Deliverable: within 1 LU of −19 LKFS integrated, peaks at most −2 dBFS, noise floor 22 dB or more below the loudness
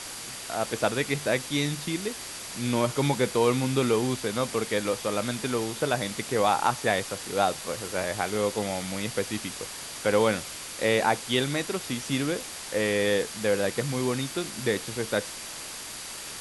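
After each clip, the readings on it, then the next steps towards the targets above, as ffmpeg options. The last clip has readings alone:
interfering tone 4,700 Hz; level of the tone −49 dBFS; background noise floor −39 dBFS; target noise floor −50 dBFS; integrated loudness −27.5 LKFS; sample peak −8.5 dBFS; target loudness −19.0 LKFS
→ -af "bandreject=frequency=4700:width=30"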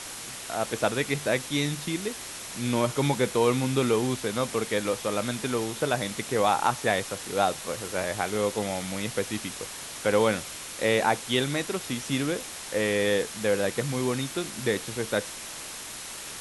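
interfering tone none found; background noise floor −39 dBFS; target noise floor −50 dBFS
→ -af "afftdn=noise_reduction=11:noise_floor=-39"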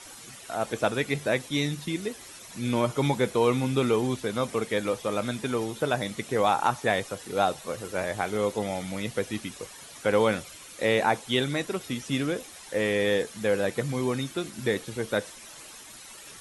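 background noise floor −46 dBFS; target noise floor −50 dBFS
→ -af "afftdn=noise_reduction=6:noise_floor=-46"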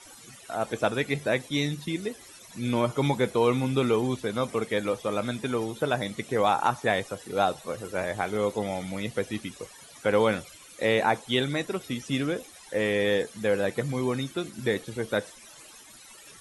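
background noise floor −50 dBFS; integrated loudness −28.0 LKFS; sample peak −9.0 dBFS; target loudness −19.0 LKFS
→ -af "volume=9dB,alimiter=limit=-2dB:level=0:latency=1"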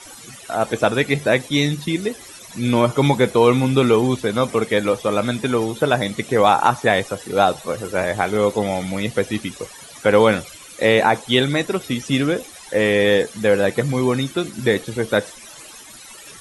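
integrated loudness −19.0 LKFS; sample peak −2.0 dBFS; background noise floor −41 dBFS

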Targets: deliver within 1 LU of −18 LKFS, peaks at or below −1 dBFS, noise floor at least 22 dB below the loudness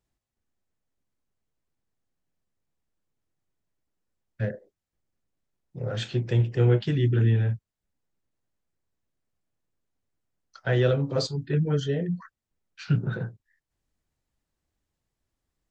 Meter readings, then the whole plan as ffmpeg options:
integrated loudness −26.0 LKFS; sample peak −10.0 dBFS; target loudness −18.0 LKFS
→ -af "volume=8dB"

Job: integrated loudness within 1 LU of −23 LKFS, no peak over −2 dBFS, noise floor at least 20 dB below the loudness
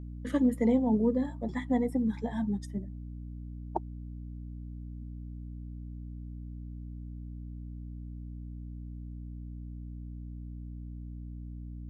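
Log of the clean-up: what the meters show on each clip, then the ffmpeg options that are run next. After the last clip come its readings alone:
mains hum 60 Hz; hum harmonics up to 300 Hz; level of the hum −39 dBFS; integrated loudness −35.0 LKFS; sample peak −15.5 dBFS; target loudness −23.0 LKFS
→ -af "bandreject=frequency=60:width_type=h:width=4,bandreject=frequency=120:width_type=h:width=4,bandreject=frequency=180:width_type=h:width=4,bandreject=frequency=240:width_type=h:width=4,bandreject=frequency=300:width_type=h:width=4"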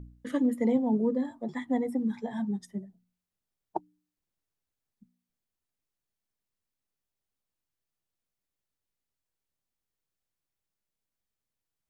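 mains hum none found; integrated loudness −30.5 LKFS; sample peak −16.5 dBFS; target loudness −23.0 LKFS
→ -af "volume=7.5dB"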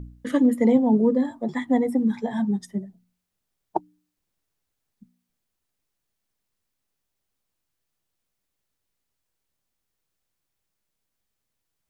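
integrated loudness −23.0 LKFS; sample peak −9.0 dBFS; background noise floor −81 dBFS

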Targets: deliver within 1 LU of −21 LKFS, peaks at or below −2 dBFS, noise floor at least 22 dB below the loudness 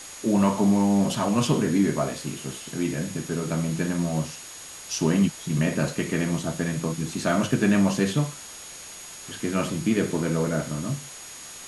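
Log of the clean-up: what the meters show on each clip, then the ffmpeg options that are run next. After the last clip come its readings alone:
interfering tone 6,700 Hz; level of the tone −43 dBFS; background noise floor −41 dBFS; target noise floor −47 dBFS; integrated loudness −25.0 LKFS; sample peak −8.5 dBFS; target loudness −21.0 LKFS
→ -af "bandreject=frequency=6700:width=30"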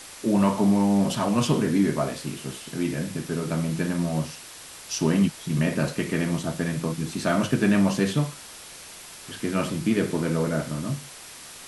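interfering tone none found; background noise floor −43 dBFS; target noise floor −47 dBFS
→ -af "afftdn=noise_reduction=6:noise_floor=-43"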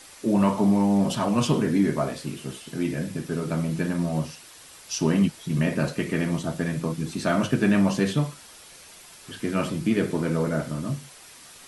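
background noise floor −48 dBFS; integrated loudness −25.0 LKFS; sample peak −9.0 dBFS; target loudness −21.0 LKFS
→ -af "volume=4dB"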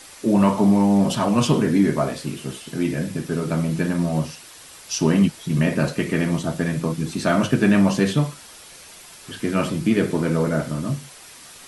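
integrated loudness −21.0 LKFS; sample peak −5.0 dBFS; background noise floor −44 dBFS

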